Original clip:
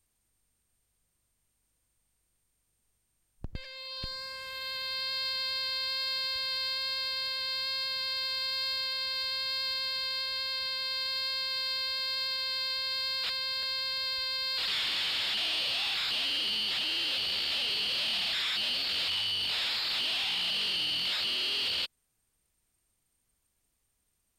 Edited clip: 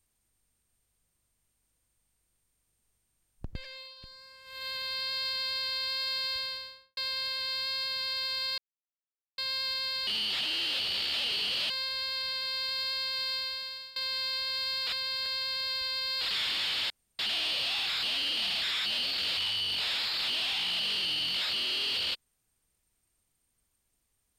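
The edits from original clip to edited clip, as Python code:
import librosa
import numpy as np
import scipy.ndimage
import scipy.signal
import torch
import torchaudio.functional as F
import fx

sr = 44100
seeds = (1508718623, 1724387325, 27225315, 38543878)

y = fx.studio_fade_out(x, sr, start_s=6.35, length_s=0.62)
y = fx.edit(y, sr, fx.fade_down_up(start_s=3.73, length_s=0.93, db=-12.0, fade_s=0.22),
    fx.silence(start_s=8.58, length_s=0.8),
    fx.fade_out_to(start_s=11.69, length_s=0.64, floor_db=-20.5),
    fx.insert_room_tone(at_s=15.27, length_s=0.29),
    fx.move(start_s=16.45, length_s=1.63, to_s=10.07), tone=tone)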